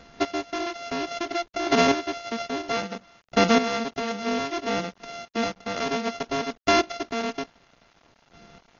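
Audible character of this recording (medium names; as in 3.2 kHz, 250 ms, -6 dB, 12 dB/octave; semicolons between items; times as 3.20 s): a buzz of ramps at a fixed pitch in blocks of 64 samples; chopped level 0.6 Hz, depth 65%, duty 15%; a quantiser's noise floor 10-bit, dither none; AC-3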